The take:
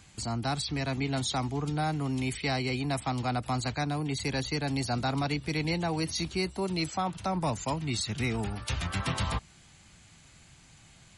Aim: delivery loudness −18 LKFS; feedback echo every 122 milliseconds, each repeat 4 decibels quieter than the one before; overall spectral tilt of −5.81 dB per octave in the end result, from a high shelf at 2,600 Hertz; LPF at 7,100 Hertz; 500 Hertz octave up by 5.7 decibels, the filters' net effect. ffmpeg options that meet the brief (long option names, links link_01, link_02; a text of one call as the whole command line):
ffmpeg -i in.wav -af "lowpass=7100,equalizer=frequency=500:width_type=o:gain=8,highshelf=frequency=2600:gain=-7,aecho=1:1:122|244|366|488|610|732|854|976|1098:0.631|0.398|0.25|0.158|0.0994|0.0626|0.0394|0.0249|0.0157,volume=10dB" out.wav